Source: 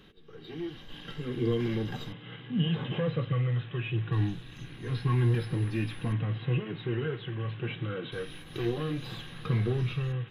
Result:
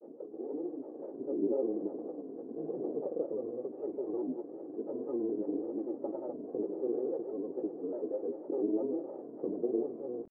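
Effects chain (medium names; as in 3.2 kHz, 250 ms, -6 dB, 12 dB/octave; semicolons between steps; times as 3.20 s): spectral levelling over time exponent 0.6; elliptic band-pass 280–710 Hz, stop band 70 dB; granulator, pitch spread up and down by 3 st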